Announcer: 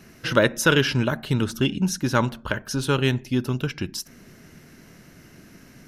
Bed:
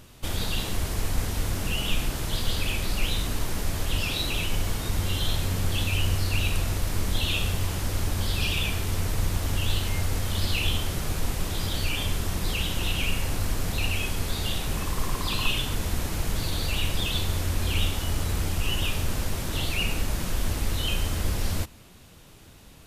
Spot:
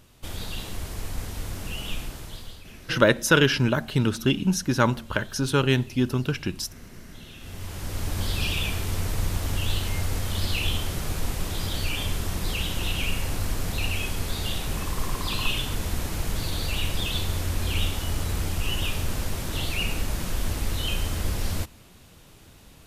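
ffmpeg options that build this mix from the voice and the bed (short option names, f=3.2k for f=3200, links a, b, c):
-filter_complex "[0:a]adelay=2650,volume=0dB[a];[1:a]volume=14dB,afade=t=out:st=1.93:d=0.71:silence=0.188365,afade=t=in:st=7.38:d=0.85:silence=0.105925[b];[a][b]amix=inputs=2:normalize=0"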